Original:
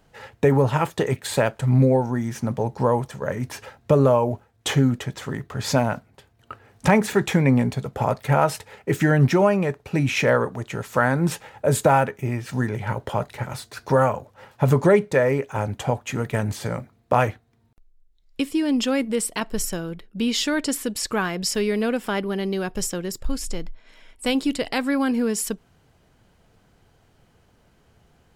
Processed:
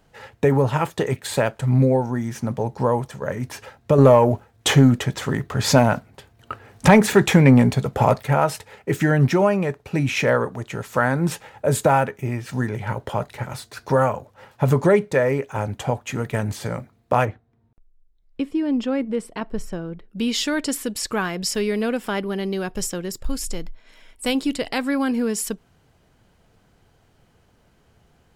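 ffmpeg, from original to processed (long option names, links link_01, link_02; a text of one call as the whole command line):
ffmpeg -i in.wav -filter_complex "[0:a]asettb=1/sr,asplit=3[link_01][link_02][link_03];[link_01]atrim=end=3.984[link_04];[link_02]atrim=start=3.98:end=8.23,asetpts=PTS-STARTPTS,afade=type=in:duration=0.004:curve=qsin,afade=type=out:start_time=4.246:duration=0.004:curve=qsin,acontrast=54[link_05];[link_03]atrim=start=8.226[link_06];[link_04][link_05]acrossfade=duration=0.004:curve1=hsin:curve2=qsin[link_07];[link_07][link_06]acrossfade=duration=0.004:curve1=qsin:curve2=hsin,asplit=3[link_08][link_09][link_10];[link_08]afade=type=out:start_time=17.24:duration=0.02[link_11];[link_09]lowpass=frequency=1100:poles=1,afade=type=in:start_time=17.24:duration=0.02,afade=type=out:start_time=20.08:duration=0.02[link_12];[link_10]afade=type=in:start_time=20.08:duration=0.02[link_13];[link_11][link_12][link_13]amix=inputs=3:normalize=0,asettb=1/sr,asplit=3[link_14][link_15][link_16];[link_14]atrim=end=23.244[link_17];[link_15]atrim=start=23.24:end=24.33,asetpts=PTS-STARTPTS,afade=type=in:duration=0.004:curve=qsin,afade=type=out:start_time=1.086:duration=0.004:curve=qsin,highshelf=frequency=8600:gain=6.5[link_18];[link_16]atrim=start=24.326[link_19];[link_17][link_18]acrossfade=duration=0.004:curve1=hsin:curve2=qsin[link_20];[link_20][link_19]acrossfade=duration=0.004:curve1=qsin:curve2=hsin" out.wav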